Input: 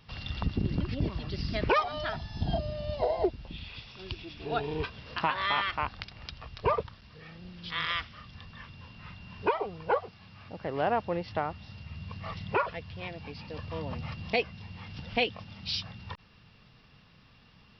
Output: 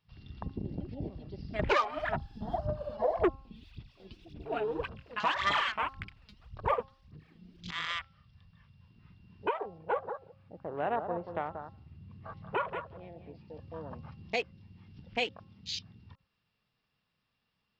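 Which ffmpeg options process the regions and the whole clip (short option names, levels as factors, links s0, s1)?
-filter_complex "[0:a]asettb=1/sr,asplit=3[s0][s1][s2];[s0]atrim=end=1.594[s3];[s1]atrim=start=1.59:end=7.71,asetpts=PTS-STARTPTS,afade=t=in:d=0.004:c=qsin,afade=t=out:st=6.116:d=0.004:c=qsin,aphaser=in_gain=1:out_gain=1:delay=4.8:decay=0.76:speed=1.8:type=sinusoidal,asoftclip=type=hard:threshold=0.15[s4];[s2]atrim=start=7.706[s5];[s3][s4]acrossfade=d=0.004:c1=hsin:c2=qsin[s6];[s6][s5]acrossfade=d=0.004:c1=qsin:c2=hsin,asettb=1/sr,asplit=3[s7][s8][s9];[s7]atrim=end=9.784[s10];[s8]atrim=start=9.78:end=13.41,asetpts=PTS-STARTPTS,afade=t=in:d=0.004:c=qsin,afade=t=out:st=3.626:d=0.004:c=qsin,aemphasis=mode=reproduction:type=50fm,aecho=1:1:183|366|549:0.422|0.0717|0.0122,atrim=end_sample=160083[s11];[s9]atrim=start=13.406[s12];[s10][s11]acrossfade=d=0.004:c1=hsin:c2=qsin[s13];[s13][s12]acrossfade=d=0.004:c1=qsin:c2=hsin,afwtdn=0.0126,lowshelf=f=190:g=-8,bandreject=f=268.3:t=h:w=4,bandreject=f=536.6:t=h:w=4,bandreject=f=804.9:t=h:w=4,bandreject=f=1073.2:t=h:w=4,bandreject=f=1341.5:t=h:w=4,volume=0.668"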